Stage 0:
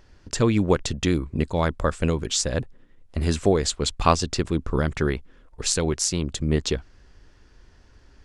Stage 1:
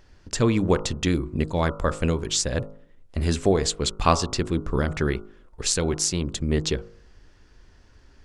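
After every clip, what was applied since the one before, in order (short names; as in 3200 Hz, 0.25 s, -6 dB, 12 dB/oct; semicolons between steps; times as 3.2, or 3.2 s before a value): de-hum 51.82 Hz, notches 28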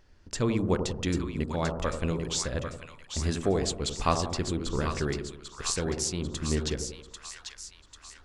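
split-band echo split 970 Hz, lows 90 ms, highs 0.793 s, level -6.5 dB; gain -6.5 dB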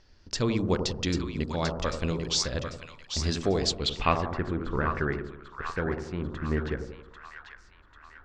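low-pass sweep 5100 Hz -> 1600 Hz, 3.71–4.34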